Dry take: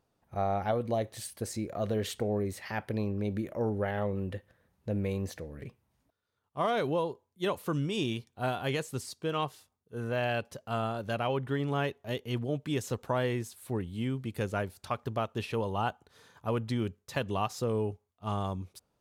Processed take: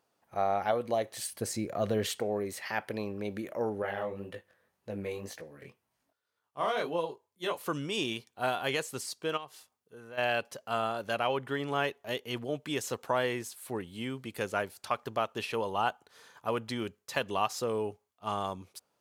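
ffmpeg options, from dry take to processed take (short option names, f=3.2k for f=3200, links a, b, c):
-filter_complex "[0:a]asettb=1/sr,asplit=3[a][b][c];[a]atrim=end=1.324[d];[b]atrim=start=1.32:end=2.07,asetpts=PTS-STARTPTS,afade=t=in:d=0.004:c=qsin,afade=t=out:st=0.746:d=0.004:c=qsin,equalizer=f=110:w=0.51:g=9[e];[c]atrim=start=2.066[f];[d][e]acrossfade=d=0.004:c1=hsin:c2=qsin[g];[g][f]acrossfade=d=0.004:c1=qsin:c2=hsin,asettb=1/sr,asplit=3[h][i][j];[h]atrim=end=3.824[k];[i]atrim=start=3.82:end=7.61,asetpts=PTS-STARTPTS,afade=t=in:d=0.004:c=qsin,afade=t=out:st=3.786:d=0.004:c=qsin,flanger=delay=17.5:depth=5.7:speed=1.9[l];[j]atrim=start=7.606[m];[k][l]acrossfade=d=0.004:c1=hsin:c2=qsin[n];[n][m]acrossfade=d=0.004:c1=qsin:c2=hsin,asplit=3[o][p][q];[o]afade=t=out:st=9.36:d=0.02[r];[p]acompressor=threshold=-48dB:ratio=2.5:attack=3.2:release=140:knee=1:detection=peak,afade=t=in:st=9.36:d=0.02,afade=t=out:st=10.17:d=0.02[s];[q]afade=t=in:st=10.17:d=0.02[t];[r][s][t]amix=inputs=3:normalize=0,highpass=f=580:p=1,bandreject=f=3.7k:w=26,volume=4dB"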